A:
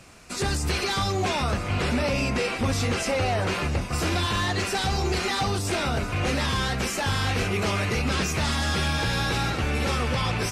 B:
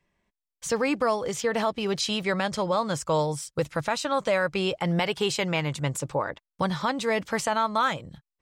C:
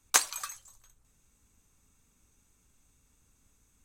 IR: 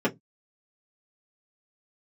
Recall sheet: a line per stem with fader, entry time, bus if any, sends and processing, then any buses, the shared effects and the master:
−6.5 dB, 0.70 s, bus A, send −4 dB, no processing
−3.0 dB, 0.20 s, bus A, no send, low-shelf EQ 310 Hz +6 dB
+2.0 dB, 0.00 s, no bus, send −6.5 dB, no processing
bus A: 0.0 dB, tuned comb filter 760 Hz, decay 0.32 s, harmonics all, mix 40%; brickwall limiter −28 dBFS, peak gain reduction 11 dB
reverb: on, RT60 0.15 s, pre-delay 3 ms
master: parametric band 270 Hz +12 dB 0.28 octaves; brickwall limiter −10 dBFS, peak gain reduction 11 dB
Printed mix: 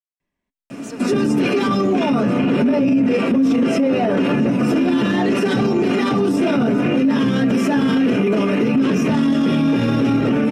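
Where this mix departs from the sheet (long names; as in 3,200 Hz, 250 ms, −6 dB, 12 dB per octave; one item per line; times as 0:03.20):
stem A −6.5 dB → +3.5 dB
stem B: missing low-shelf EQ 310 Hz +6 dB
stem C: muted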